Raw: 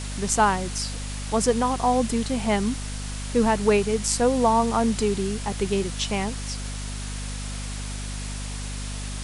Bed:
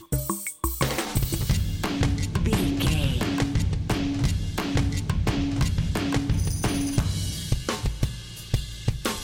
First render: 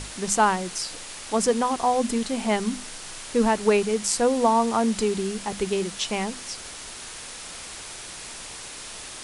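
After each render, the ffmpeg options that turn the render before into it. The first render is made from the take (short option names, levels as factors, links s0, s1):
-af "bandreject=f=50:t=h:w=6,bandreject=f=100:t=h:w=6,bandreject=f=150:t=h:w=6,bandreject=f=200:t=h:w=6,bandreject=f=250:t=h:w=6"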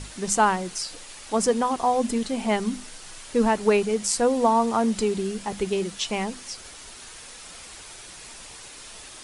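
-af "afftdn=nr=6:nf=-39"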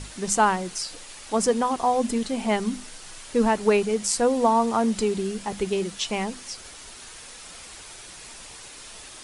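-af anull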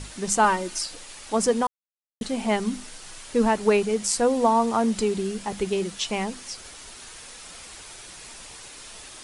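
-filter_complex "[0:a]asettb=1/sr,asplit=3[s0][s1][s2];[s0]atrim=end=0.444[s3];[s1]atrim=start=0.44:end=0.86,asetpts=PTS-STARTPTS,afade=t=in:d=0.004:c=qsin,afade=t=out:st=0.416:d=0.004:c=qsin,aecho=1:1:3.3:0.64,atrim=end_sample=18522[s4];[s2]atrim=start=0.856[s5];[s3][s4]acrossfade=d=0.004:c1=hsin:c2=qsin[s6];[s6][s5]acrossfade=d=0.004:c1=qsin:c2=hsin,asplit=3[s7][s8][s9];[s7]atrim=end=1.67,asetpts=PTS-STARTPTS,afade=t=out:st=1.666:d=0.004:c=hsin[s10];[s8]atrim=start=1.67:end=2.21,asetpts=PTS-STARTPTS,volume=0[s11];[s9]atrim=start=2.21,asetpts=PTS-STARTPTS,afade=t=in:d=0.004:c=hsin[s12];[s10][s11][s12]concat=n=3:v=0:a=1"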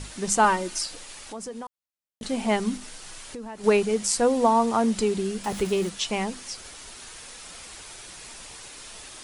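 -filter_complex "[0:a]asettb=1/sr,asplit=3[s0][s1][s2];[s0]atrim=end=1.214[s3];[s1]atrim=start=1.21:end=2.23,asetpts=PTS-STARTPTS,afade=t=in:d=0.004:c=qsin,afade=t=out:st=1.016:d=0.004:c=qsin,acompressor=threshold=0.0126:ratio=3:attack=3.2:release=140:knee=1:detection=peak[s4];[s2]atrim=start=2.226[s5];[s3][s4]acrossfade=d=0.004:c1=hsin:c2=qsin[s6];[s6][s5]acrossfade=d=0.004:c1=qsin:c2=hsin,asettb=1/sr,asplit=3[s7][s8][s9];[s7]atrim=end=2.774[s10];[s8]atrim=start=2.77:end=3.64,asetpts=PTS-STARTPTS,afade=t=in:d=0.004:c=qsin,afade=t=out:st=0.866:d=0.004:c=qsin,acompressor=threshold=0.0178:ratio=6:attack=3.2:release=140:knee=1:detection=peak[s11];[s9]atrim=start=3.636[s12];[s10][s11]acrossfade=d=0.004:c1=hsin:c2=qsin[s13];[s13][s12]acrossfade=d=0.004:c1=qsin:c2=hsin,asettb=1/sr,asplit=3[s14][s15][s16];[s14]atrim=end=5.444[s17];[s15]atrim=start=5.44:end=5.89,asetpts=PTS-STARTPTS,afade=t=in:d=0.004:c=qsin,afade=t=out:st=0.446:d=0.004:c=qsin,aeval=exprs='val(0)+0.5*0.0168*sgn(val(0))':c=same[s18];[s16]atrim=start=5.886[s19];[s17][s18]acrossfade=d=0.004:c1=hsin:c2=qsin[s20];[s20][s19]acrossfade=d=0.004:c1=qsin:c2=hsin"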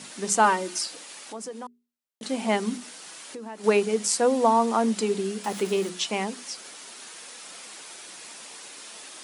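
-af "highpass=f=190:w=0.5412,highpass=f=190:w=1.3066,bandreject=f=60:t=h:w=6,bandreject=f=120:t=h:w=6,bandreject=f=180:t=h:w=6,bandreject=f=240:t=h:w=6,bandreject=f=300:t=h:w=6,bandreject=f=360:t=h:w=6,bandreject=f=420:t=h:w=6"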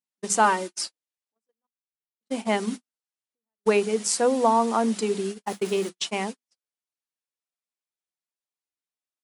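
-af "agate=range=0.00158:threshold=0.0355:ratio=16:detection=peak"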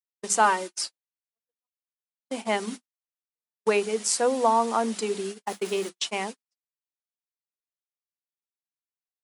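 -af "agate=range=0.178:threshold=0.00708:ratio=16:detection=peak,highpass=f=360:p=1"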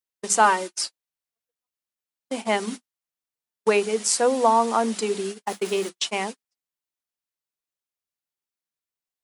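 -af "volume=1.41"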